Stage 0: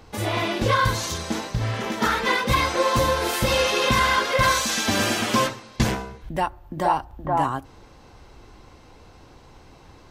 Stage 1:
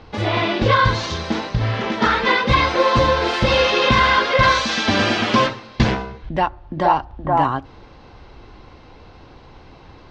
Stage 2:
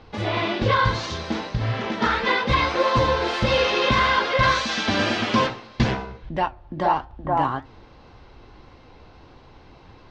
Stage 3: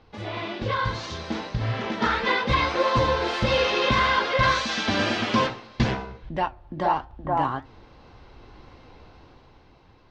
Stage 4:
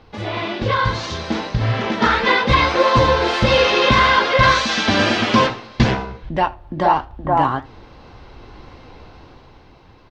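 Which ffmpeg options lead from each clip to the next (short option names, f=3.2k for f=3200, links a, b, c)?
-af "lowpass=f=4.7k:w=0.5412,lowpass=f=4.7k:w=1.3066,volume=5dB"
-af "flanger=delay=7.5:depth=9.6:regen=77:speed=1.7:shape=sinusoidal"
-af "dynaudnorm=f=170:g=13:m=9dB,volume=-8dB"
-af "aecho=1:1:80:0.0631,volume=7.5dB"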